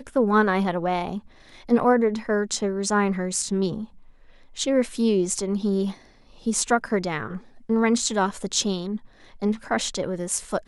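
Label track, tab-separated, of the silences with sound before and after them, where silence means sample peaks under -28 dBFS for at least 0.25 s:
1.180000	1.690000	silence
3.840000	4.580000	silence
5.910000	6.460000	silence
7.370000	7.700000	silence
8.970000	9.420000	silence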